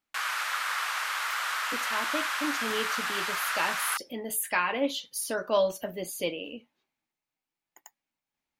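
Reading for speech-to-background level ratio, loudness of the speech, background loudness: -1.5 dB, -31.5 LUFS, -30.0 LUFS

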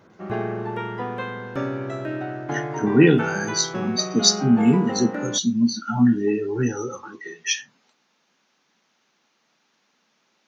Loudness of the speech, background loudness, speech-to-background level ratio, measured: -21.0 LUFS, -29.5 LUFS, 8.5 dB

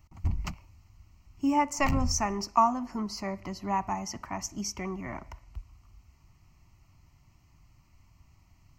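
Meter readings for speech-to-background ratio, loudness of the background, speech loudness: 4.5 dB, -35.0 LUFS, -30.5 LUFS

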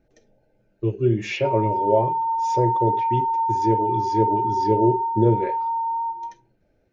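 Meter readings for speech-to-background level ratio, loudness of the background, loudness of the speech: -0.5 dB, -23.5 LUFS, -24.0 LUFS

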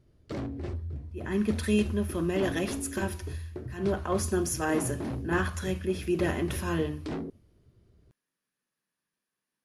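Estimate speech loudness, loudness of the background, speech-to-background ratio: -30.5 LUFS, -37.5 LUFS, 7.0 dB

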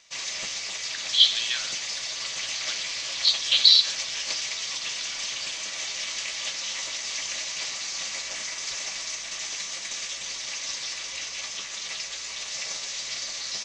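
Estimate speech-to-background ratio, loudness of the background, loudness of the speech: 10.5 dB, -30.0 LUFS, -19.5 LUFS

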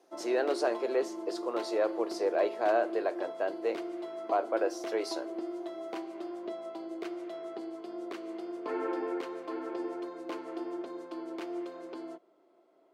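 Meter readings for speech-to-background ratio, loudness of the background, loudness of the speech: 7.5 dB, -39.5 LUFS, -32.0 LUFS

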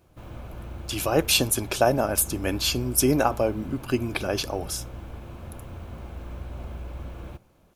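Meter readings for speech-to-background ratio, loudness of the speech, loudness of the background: 15.5 dB, -24.5 LUFS, -40.0 LUFS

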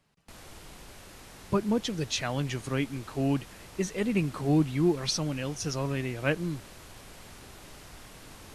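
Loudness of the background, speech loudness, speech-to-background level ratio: -48.0 LUFS, -30.0 LUFS, 18.0 dB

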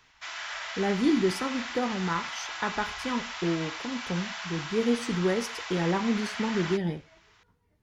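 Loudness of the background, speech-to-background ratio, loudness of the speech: -36.0 LUFS, 6.0 dB, -30.0 LUFS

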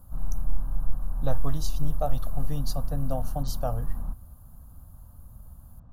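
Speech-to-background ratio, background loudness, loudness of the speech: 1.5 dB, -36.0 LUFS, -34.5 LUFS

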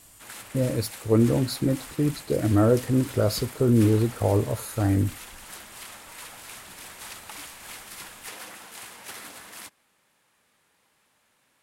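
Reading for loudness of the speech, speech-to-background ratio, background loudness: -24.0 LUFS, 17.0 dB, -41.0 LUFS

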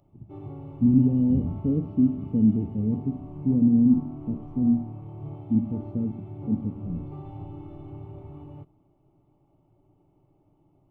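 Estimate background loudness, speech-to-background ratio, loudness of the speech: -40.5 LUFS, 16.0 dB, -24.5 LUFS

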